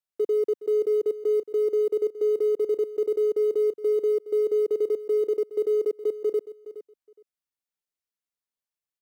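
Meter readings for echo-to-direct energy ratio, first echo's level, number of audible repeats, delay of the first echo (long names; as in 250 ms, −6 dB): −15.0 dB, −15.0 dB, 2, 417 ms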